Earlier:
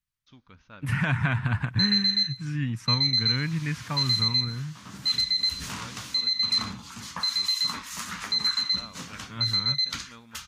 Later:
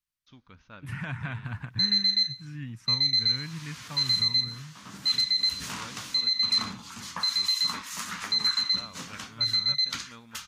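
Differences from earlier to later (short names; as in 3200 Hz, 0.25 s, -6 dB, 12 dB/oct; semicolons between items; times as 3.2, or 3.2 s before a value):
second voice -9.5 dB; background: add HPF 150 Hz 6 dB/oct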